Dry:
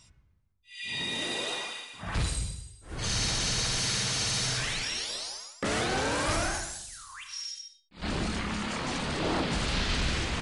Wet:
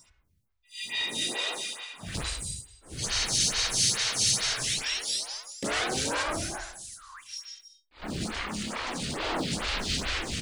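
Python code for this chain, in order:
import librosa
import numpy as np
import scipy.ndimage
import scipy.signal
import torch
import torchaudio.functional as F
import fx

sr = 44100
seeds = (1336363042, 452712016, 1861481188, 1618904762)

y = fx.high_shelf(x, sr, hz=2300.0, db=fx.steps((0.0, 10.0), (6.22, 2.0), (8.2, 8.0)))
y = fx.quant_float(y, sr, bits=4)
y = fx.stagger_phaser(y, sr, hz=2.3)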